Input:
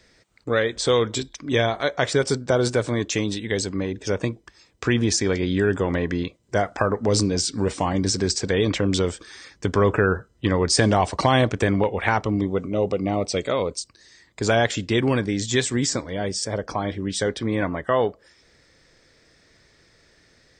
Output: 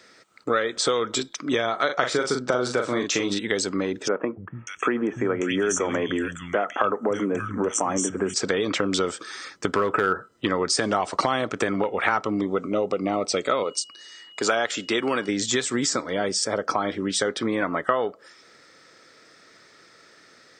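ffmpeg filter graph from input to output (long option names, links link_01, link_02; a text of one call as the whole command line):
ffmpeg -i in.wav -filter_complex "[0:a]asettb=1/sr,asplit=3[link_01][link_02][link_03];[link_01]atrim=end=1.854[link_04];[link_02]atrim=start=1.85:end=3.39,asetpts=PTS-STARTPTS,afade=type=in:duration=0.004:curve=qsin,afade=type=out:start_time=1.536:duration=0.004:curve=qsin,lowpass=7700,asplit=2[link_05][link_06];[link_06]adelay=40,volume=-5.5dB[link_07];[link_05][link_07]amix=inputs=2:normalize=0,atrim=end_sample=67914[link_08];[link_03]atrim=start=3.386[link_09];[link_04][link_08]acrossfade=duration=0.004:curve1=hsin:curve2=qsin[link_10];[link_10][link_09]acrossfade=duration=0.004:curve1=qsin:curve2=hsin,asettb=1/sr,asplit=3[link_11][link_12][link_13];[link_11]atrim=end=4.084[link_14];[link_12]atrim=start=4.08:end=8.34,asetpts=PTS-STARTPTS,afade=type=in:duration=0.004:curve=qsin,afade=type=out:start_time=4.256:duration=0.004:curve=qsin,asuperstop=centerf=4400:order=20:qfactor=2,acrossover=split=160|2000[link_15][link_16][link_17];[link_15]adelay=290[link_18];[link_17]adelay=590[link_19];[link_18][link_16][link_19]amix=inputs=3:normalize=0,atrim=end_sample=187866[link_20];[link_13]atrim=start=8.336[link_21];[link_14][link_20]acrossfade=duration=0.004:curve1=hsin:curve2=qsin[link_22];[link_22][link_21]acrossfade=duration=0.004:curve1=qsin:curve2=hsin,asettb=1/sr,asplit=3[link_23][link_24][link_25];[link_23]atrim=end=9.714[link_26];[link_24]atrim=start=9.71:end=10.32,asetpts=PTS-STARTPTS,afade=type=in:duration=0.004:curve=qsin,afade=type=out:start_time=0.606:duration=0.004:curve=qsin,equalizer=frequency=6300:width_type=o:width=0.39:gain=-7.5,asoftclip=type=hard:threshold=-11.5dB[link_27];[link_25]atrim=start=10.316[link_28];[link_26][link_27]acrossfade=duration=0.004:curve1=hsin:curve2=qsin[link_29];[link_29][link_28]acrossfade=duration=0.004:curve1=qsin:curve2=hsin,asettb=1/sr,asplit=3[link_30][link_31][link_32];[link_30]atrim=end=13.634[link_33];[link_31]atrim=start=13.63:end=15.29,asetpts=PTS-STARTPTS,afade=type=in:duration=0.004:curve=qsin,afade=type=out:start_time=1.656:duration=0.004:curve=qsin,highpass=frequency=350:poles=1,aeval=exprs='val(0)+0.00316*sin(2*PI*2900*n/s)':channel_layout=same[link_34];[link_32]atrim=start=15.286[link_35];[link_33][link_34]acrossfade=duration=0.004:curve1=hsin:curve2=qsin[link_36];[link_36][link_35]acrossfade=duration=0.004:curve1=qsin:curve2=hsin,highpass=230,acompressor=threshold=-25dB:ratio=6,equalizer=frequency=1300:width_type=o:width=0.21:gain=12.5,volume=4.5dB" out.wav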